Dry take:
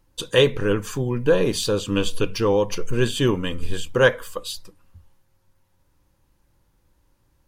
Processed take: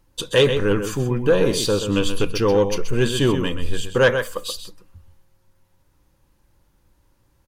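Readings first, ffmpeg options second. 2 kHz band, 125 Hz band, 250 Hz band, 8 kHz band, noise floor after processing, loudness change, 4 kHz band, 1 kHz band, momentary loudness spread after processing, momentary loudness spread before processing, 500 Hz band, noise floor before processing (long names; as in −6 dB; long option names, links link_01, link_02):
+1.0 dB, +2.0 dB, +2.0 dB, +2.0 dB, −63 dBFS, +2.0 dB, +1.5 dB, +1.5 dB, 10 LU, 13 LU, +1.5 dB, −66 dBFS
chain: -filter_complex "[0:a]asplit=2[link_01][link_02];[link_02]adelay=128.3,volume=-9dB,highshelf=frequency=4000:gain=-2.89[link_03];[link_01][link_03]amix=inputs=2:normalize=0,acontrast=72,volume=-4.5dB"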